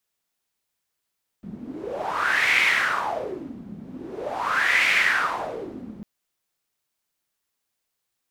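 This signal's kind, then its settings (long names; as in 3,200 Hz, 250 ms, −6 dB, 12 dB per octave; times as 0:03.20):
wind from filtered noise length 4.60 s, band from 200 Hz, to 2,200 Hz, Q 5.8, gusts 2, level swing 19.5 dB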